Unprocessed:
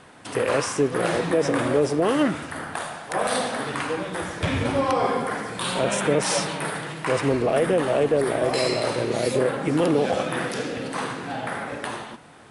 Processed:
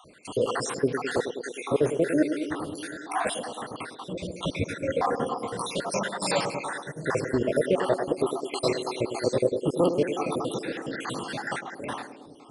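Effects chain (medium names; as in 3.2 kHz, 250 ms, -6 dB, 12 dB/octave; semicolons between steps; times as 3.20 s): random holes in the spectrogram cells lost 67%; 3.34–4.01 s: compression 3:1, threshold -34 dBFS, peak gain reduction 7 dB; 11.07–11.59 s: treble shelf 2.8 kHz +10.5 dB; band-passed feedback delay 104 ms, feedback 81%, band-pass 340 Hz, level -7.5 dB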